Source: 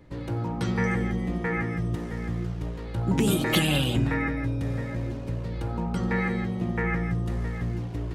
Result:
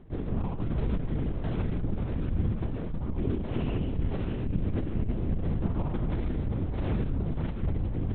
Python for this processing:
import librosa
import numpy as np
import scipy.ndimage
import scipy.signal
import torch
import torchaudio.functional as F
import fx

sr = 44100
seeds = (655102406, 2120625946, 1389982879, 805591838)

y = scipy.signal.medfilt(x, 25)
y = scipy.signal.sosfilt(scipy.signal.butter(2, 75.0, 'highpass', fs=sr, output='sos'), y)
y = fx.low_shelf(y, sr, hz=120.0, db=11.5)
y = fx.rider(y, sr, range_db=10, speed_s=0.5)
y = fx.echo_diffused(y, sr, ms=575, feedback_pct=48, wet_db=-8.0)
y = fx.lpc_vocoder(y, sr, seeds[0], excitation='whisper', order=8)
y = fx.transformer_sat(y, sr, knee_hz=58.0)
y = y * librosa.db_to_amplitude(-4.0)